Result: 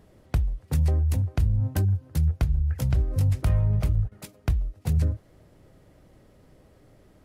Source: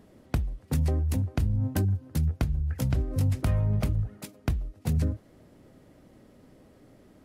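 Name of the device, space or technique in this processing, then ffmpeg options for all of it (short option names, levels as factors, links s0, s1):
low shelf boost with a cut just above: -filter_complex "[0:a]lowshelf=f=100:g=7,equalizer=f=250:t=o:w=0.97:g=-5,asettb=1/sr,asplit=3[s0][s1][s2];[s0]atrim=end=3.494[s3];[s1]atrim=start=3.49:end=4.12,asetpts=PTS-STARTPTS,afade=t=in:d=0.004:c=qsin,afade=t=out:st=0.626:d=0.004:c=qsin,agate=range=0.2:threshold=0.0562:ratio=16:detection=peak[s4];[s2]atrim=start=4.116[s5];[s3][s4]acrossfade=d=0.004:c1=hsin:c2=qsin[s6];[s6][s5]acrossfade=d=0.004:c1=qsin:c2=hsin,equalizer=f=240:t=o:w=0.24:g=-3.5"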